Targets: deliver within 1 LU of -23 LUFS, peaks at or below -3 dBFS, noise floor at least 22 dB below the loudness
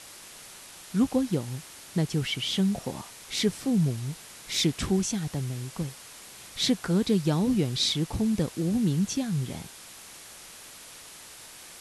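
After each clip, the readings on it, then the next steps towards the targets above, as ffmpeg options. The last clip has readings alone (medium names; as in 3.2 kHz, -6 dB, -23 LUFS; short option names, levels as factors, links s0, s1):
noise floor -47 dBFS; noise floor target -50 dBFS; loudness -27.5 LUFS; peak level -12.5 dBFS; loudness target -23.0 LUFS
-> -af "afftdn=nr=6:nf=-47"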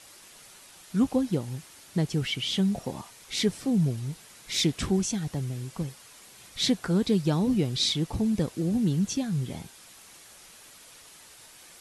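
noise floor -51 dBFS; loudness -28.0 LUFS; peak level -12.5 dBFS; loudness target -23.0 LUFS
-> -af "volume=1.78"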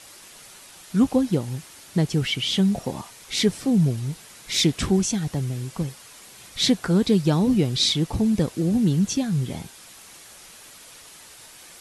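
loudness -23.0 LUFS; peak level -7.5 dBFS; noise floor -46 dBFS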